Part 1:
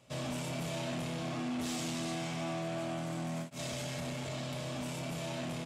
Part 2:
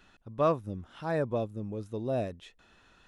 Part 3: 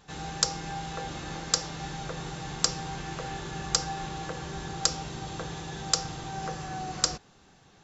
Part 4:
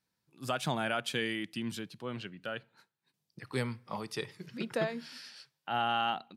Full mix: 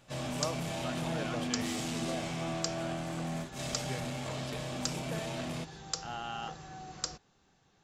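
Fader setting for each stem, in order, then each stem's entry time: +0.5, −11.5, −10.5, −9.5 decibels; 0.00, 0.00, 0.00, 0.35 seconds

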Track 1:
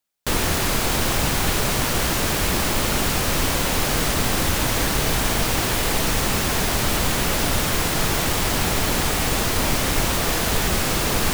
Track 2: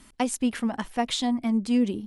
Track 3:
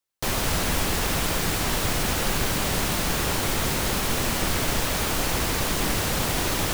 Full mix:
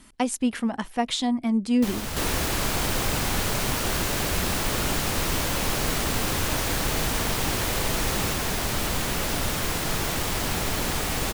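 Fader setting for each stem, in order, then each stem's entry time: −5.5, +1.0, −7.5 decibels; 1.90, 0.00, 1.60 seconds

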